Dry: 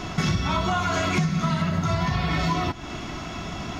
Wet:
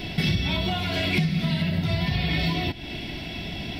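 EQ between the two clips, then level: treble shelf 2.6 kHz +9 dB; static phaser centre 2.9 kHz, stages 4; 0.0 dB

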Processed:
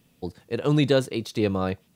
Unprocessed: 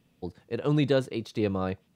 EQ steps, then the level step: treble shelf 5.2 kHz +9 dB; +3.5 dB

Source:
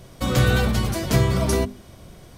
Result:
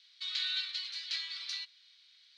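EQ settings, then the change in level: inverse Chebyshev high-pass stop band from 420 Hz, stop band 70 dB; four-pole ladder low-pass 4.4 kHz, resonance 75%; 0.0 dB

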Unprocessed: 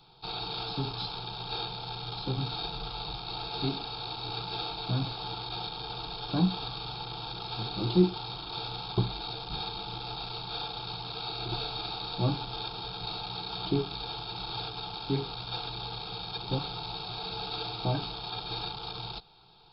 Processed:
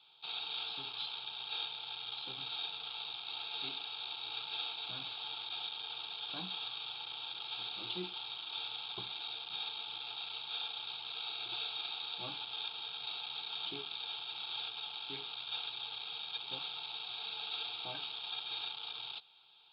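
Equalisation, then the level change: band-pass filter 3.2 kHz, Q 3.4; distance through air 380 m; +11.0 dB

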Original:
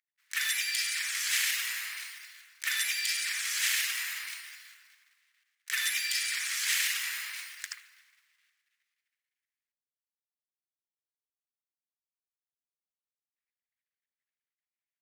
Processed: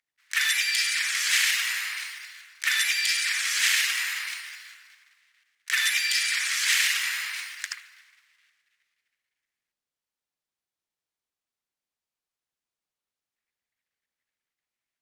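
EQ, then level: treble shelf 11 kHz -12 dB; +7.5 dB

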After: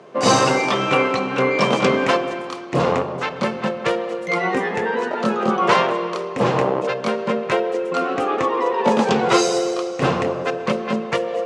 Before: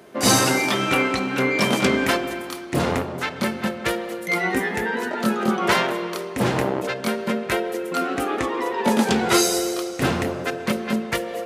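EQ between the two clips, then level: cabinet simulation 100–7300 Hz, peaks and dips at 150 Hz +9 dB, 780 Hz +4 dB, 1.1 kHz +10 dB, 2.7 kHz +4 dB; peaking EQ 500 Hz +9.5 dB 0.57 oct; -2.0 dB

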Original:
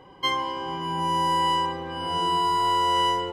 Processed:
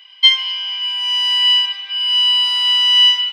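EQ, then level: Savitzky-Golay filter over 15 samples; resonant high-pass 2.7 kHz, resonance Q 3.1; tilt EQ +3.5 dB/octave; +5.5 dB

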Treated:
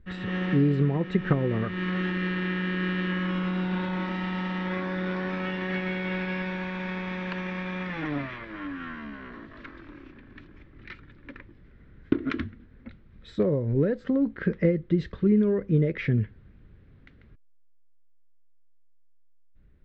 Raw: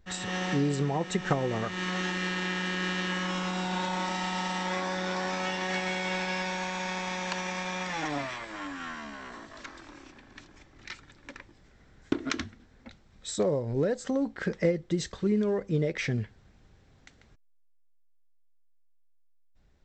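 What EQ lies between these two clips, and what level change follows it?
distance through air 380 m; peaking EQ 780 Hz -14 dB 0.92 oct; treble shelf 4.2 kHz -11 dB; +7.0 dB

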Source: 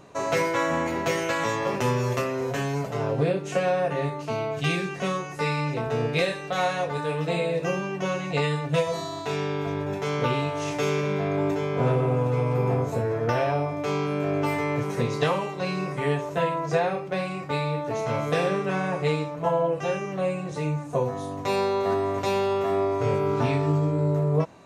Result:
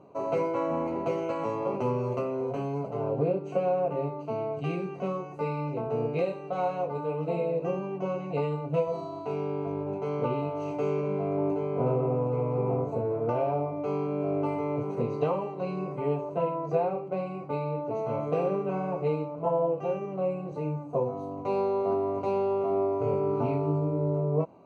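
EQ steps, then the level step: boxcar filter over 25 samples; high-pass 230 Hz 6 dB/octave; 0.0 dB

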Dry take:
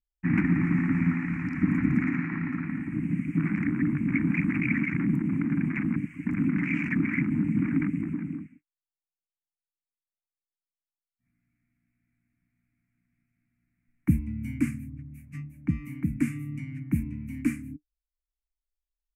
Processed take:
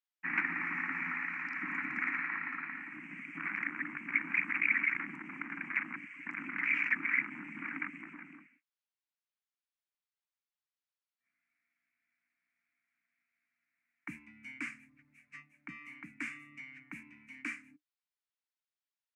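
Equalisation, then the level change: high-pass 1.1 kHz 12 dB/octave; distance through air 130 m; +4.0 dB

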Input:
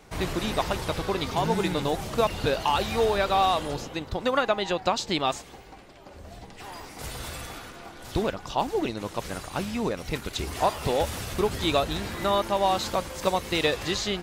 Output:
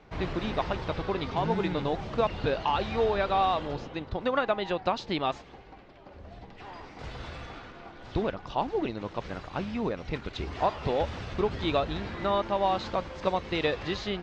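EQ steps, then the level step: low-pass 7.3 kHz 12 dB/octave; distance through air 190 m; -2.0 dB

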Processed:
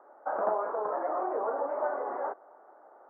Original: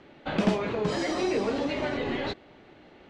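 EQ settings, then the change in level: ladder high-pass 530 Hz, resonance 30%; steep low-pass 1.4 kHz 48 dB/octave; +8.0 dB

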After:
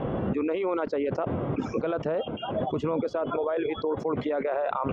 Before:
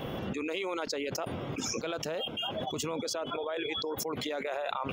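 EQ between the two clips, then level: low-pass 1.2 kHz 12 dB/octave; dynamic bell 810 Hz, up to -3 dB, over -48 dBFS, Q 4.8; +8.0 dB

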